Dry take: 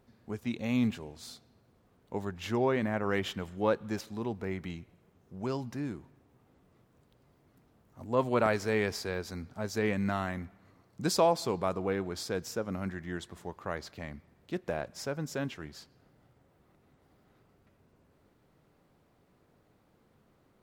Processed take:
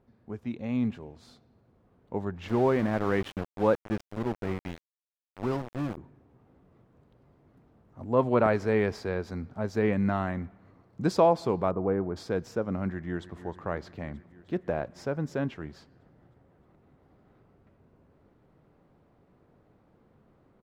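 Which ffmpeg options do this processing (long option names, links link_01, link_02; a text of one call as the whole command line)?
ffmpeg -i in.wav -filter_complex "[0:a]asettb=1/sr,asplit=3[link_01][link_02][link_03];[link_01]atrim=end=2.484[link_04];[link_02]atrim=start=2.48:end=5.97,asetpts=PTS-STARTPTS,afade=type=in:duration=0.004:curve=qsin,afade=type=out:start_time=3.486:duration=0.004:curve=qsin,aeval=exprs='val(0)*gte(abs(val(0)),0.0178)':channel_layout=same[link_05];[link_03]atrim=start=5.966[link_06];[link_04][link_05]acrossfade=duration=0.004:curve1=hsin:curve2=qsin[link_07];[link_07][link_06]acrossfade=duration=0.004:curve1=qsin:curve2=hsin,asplit=3[link_08][link_09][link_10];[link_08]afade=type=out:start_time=11.7:duration=0.02[link_11];[link_09]lowpass=1300,afade=type=in:start_time=11.7:duration=0.02,afade=type=out:start_time=12.15:duration=0.02[link_12];[link_10]afade=type=in:start_time=12.15:duration=0.02[link_13];[link_11][link_12][link_13]amix=inputs=3:normalize=0,asplit=2[link_14][link_15];[link_15]afade=type=in:start_time=12.89:duration=0.01,afade=type=out:start_time=13.39:duration=0.01,aecho=0:1:310|620|930|1240|1550|1860|2170|2480|2790|3100|3410:0.188365|0.141274|0.105955|0.0794664|0.0595998|0.0446999|0.0335249|0.0251437|0.0188578|0.0141433|0.0106075[link_16];[link_14][link_16]amix=inputs=2:normalize=0,lowpass=frequency=1200:poles=1,dynaudnorm=framelen=330:gausssize=11:maxgain=5dB" out.wav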